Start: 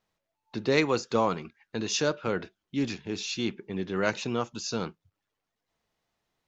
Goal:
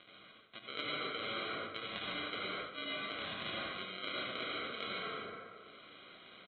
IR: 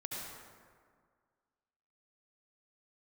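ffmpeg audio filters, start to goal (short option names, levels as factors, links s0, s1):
-filter_complex "[0:a]acompressor=mode=upward:threshold=0.01:ratio=2.5,crystalizer=i=9.5:c=0,aresample=8000,acrusher=samples=9:mix=1:aa=0.000001,aresample=44100,aderivative[s0];[1:a]atrim=start_sample=2205[s1];[s0][s1]afir=irnorm=-1:irlink=0,areverse,acompressor=threshold=0.00158:ratio=6,areverse,volume=7.5"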